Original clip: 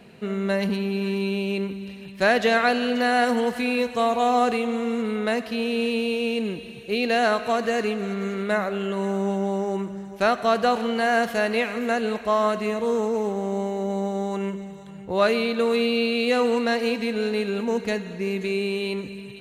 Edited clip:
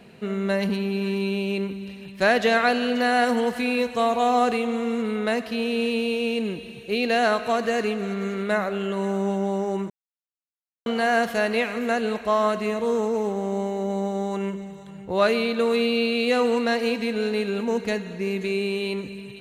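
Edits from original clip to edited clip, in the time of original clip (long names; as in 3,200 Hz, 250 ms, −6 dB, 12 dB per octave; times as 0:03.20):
0:09.90–0:10.86: silence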